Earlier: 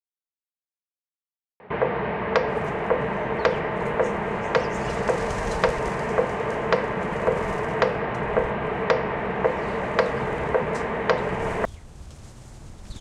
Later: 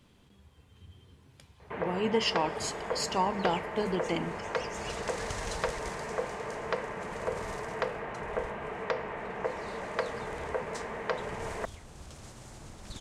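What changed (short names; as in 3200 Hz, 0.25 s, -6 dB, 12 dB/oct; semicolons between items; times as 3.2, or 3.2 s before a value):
speech: unmuted; first sound -10.0 dB; master: add low shelf 210 Hz -8 dB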